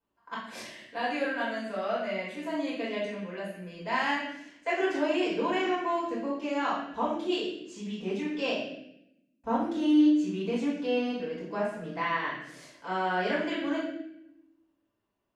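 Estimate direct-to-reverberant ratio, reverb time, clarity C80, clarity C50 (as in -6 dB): -10.0 dB, 0.80 s, 5.5 dB, 2.5 dB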